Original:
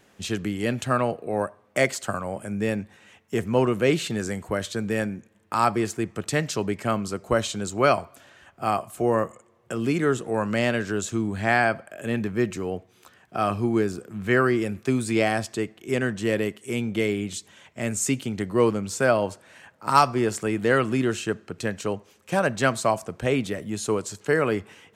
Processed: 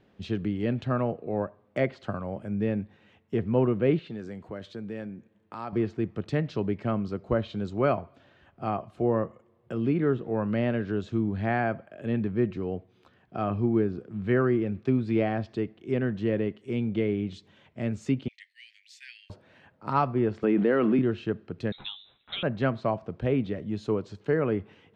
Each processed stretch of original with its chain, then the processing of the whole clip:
0:03.99–0:05.73: downward compressor 1.5 to 1, threshold −40 dBFS + high-pass filter 160 Hz 6 dB per octave
0:18.28–0:19.30: Butterworth high-pass 1,800 Hz 96 dB per octave + downward expander −55 dBFS
0:20.43–0:20.99: high-pass filter 190 Hz 24 dB per octave + envelope flattener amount 70%
0:21.72–0:22.43: mains-hum notches 50/100/150/200/250/300/350/400/450 Hz + double-tracking delay 13 ms −6 dB + voice inversion scrambler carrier 3,900 Hz
whole clip: high shelf with overshoot 5,700 Hz −13 dB, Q 1.5; treble cut that deepens with the level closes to 2,700 Hz, closed at −19 dBFS; tilt shelving filter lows +6.5 dB, about 730 Hz; level −6 dB

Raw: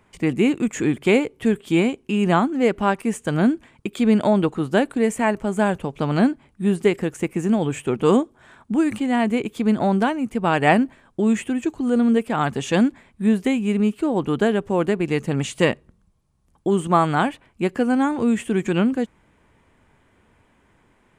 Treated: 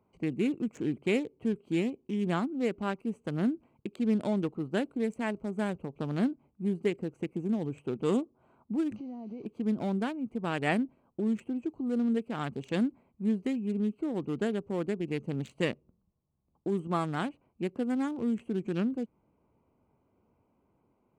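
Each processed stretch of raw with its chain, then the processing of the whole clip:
0:08.96–0:09.46: linear delta modulator 32 kbit/s, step −28.5 dBFS + parametric band 1,300 Hz −9 dB 1.8 octaves + downward compressor 10 to 1, threshold −27 dBFS
whole clip: adaptive Wiener filter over 25 samples; high-pass filter 120 Hz 6 dB per octave; dynamic equaliser 850 Hz, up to −7 dB, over −34 dBFS, Q 0.92; level −8.5 dB

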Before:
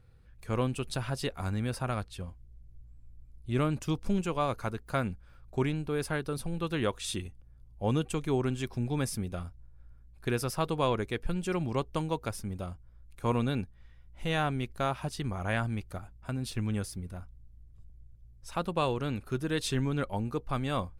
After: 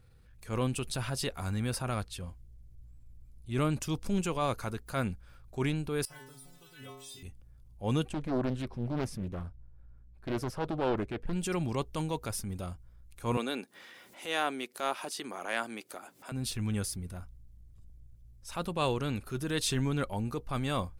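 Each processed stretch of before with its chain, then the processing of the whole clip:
0:06.05–0:07.23: bit-depth reduction 8 bits, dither none + stiff-string resonator 130 Hz, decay 0.85 s, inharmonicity 0.008
0:08.09–0:11.33: low-pass filter 1,200 Hz 6 dB per octave + highs frequency-modulated by the lows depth 0.86 ms
0:13.37–0:16.32: high-pass filter 280 Hz 24 dB per octave + upward compression, threshold −38 dBFS
whole clip: high-shelf EQ 3,600 Hz +7 dB; transient designer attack −6 dB, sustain +1 dB

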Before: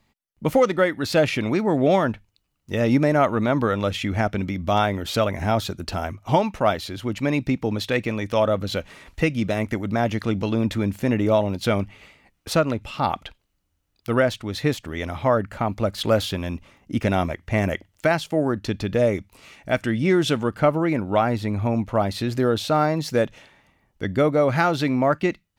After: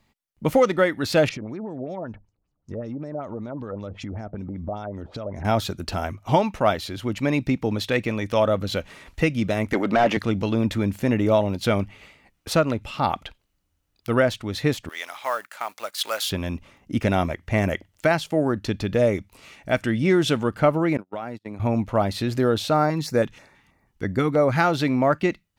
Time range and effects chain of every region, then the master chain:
0:01.29–0:05.45: parametric band 2,900 Hz −14 dB 2.3 octaves + downward compressor 10 to 1, threshold −29 dBFS + auto-filter low-pass sine 5.2 Hz 570–6,400 Hz
0:09.73–0:10.17: high-pass filter 180 Hz + mid-hump overdrive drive 21 dB, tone 1,600 Hz, clips at −8 dBFS
0:14.89–0:16.30: mu-law and A-law mismatch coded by A + high-pass filter 1,000 Hz + high-shelf EQ 4,900 Hz +9 dB
0:20.97–0:21.60: noise gate −24 dBFS, range −44 dB + downward compressor 12 to 1, threshold −27 dBFS + high-pass filter 140 Hz
0:22.74–0:24.57: de-essing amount 35% + auto-filter notch square 3.1 Hz 600–3,100 Hz
whole clip: no processing

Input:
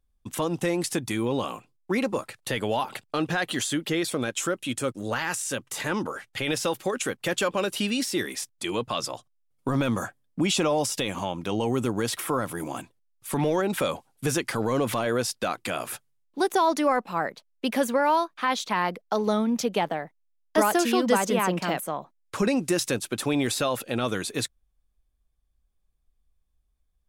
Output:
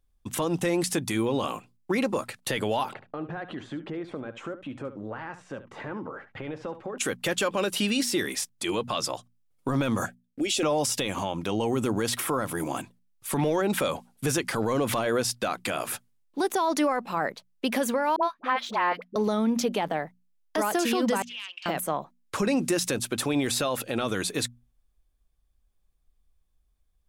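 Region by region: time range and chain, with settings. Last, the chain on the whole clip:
0:02.93–0:06.98: low-pass filter 1,300 Hz + downward compressor 2.5 to 1, threshold −38 dBFS + single-tap delay 71 ms −13 dB
0:10.06–0:10.63: noise gate −56 dBFS, range −11 dB + downward compressor 1.5 to 1, threshold −28 dBFS + phaser with its sweep stopped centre 420 Hz, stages 4
0:18.16–0:19.16: running median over 3 samples + bass and treble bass −12 dB, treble −14 dB + all-pass dispersion highs, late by 67 ms, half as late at 610 Hz
0:21.22–0:21.66: phase distortion by the signal itself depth 0.085 ms + four-pole ladder band-pass 3,100 Hz, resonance 65% + notch filter 2,000 Hz, Q 25
whole clip: mains-hum notches 60/120/180/240 Hz; brickwall limiter −19 dBFS; level +2.5 dB

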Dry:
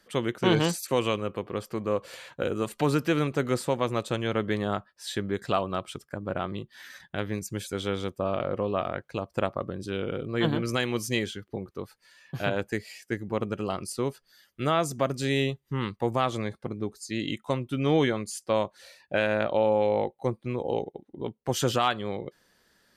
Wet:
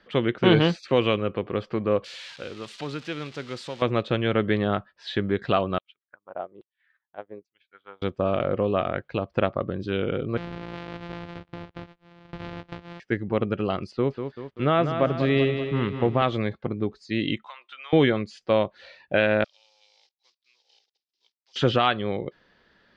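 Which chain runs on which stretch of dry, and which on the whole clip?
0:02.04–0:03.82: spike at every zero crossing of −21.5 dBFS + first-order pre-emphasis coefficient 0.8
0:05.78–0:08.02: auto-filter band-pass saw down 1.2 Hz 370–3,800 Hz + expander for the loud parts 2.5 to 1, over −55 dBFS
0:10.37–0:13.00: samples sorted by size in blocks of 256 samples + downward compressor, threshold −38 dBFS
0:13.91–0:16.22: low-pass filter 2,400 Hz 6 dB per octave + feedback echo at a low word length 193 ms, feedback 55%, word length 9 bits, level −8 dB
0:17.47–0:17.93: high-pass filter 980 Hz 24 dB per octave + downward compressor 4 to 1, threshold −43 dBFS
0:19.44–0:21.56: one scale factor per block 5 bits + four-pole ladder band-pass 5,800 Hz, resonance 60%
whole clip: low-pass filter 3,800 Hz 24 dB per octave; dynamic equaliser 960 Hz, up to −5 dB, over −44 dBFS, Q 2.5; level +5 dB

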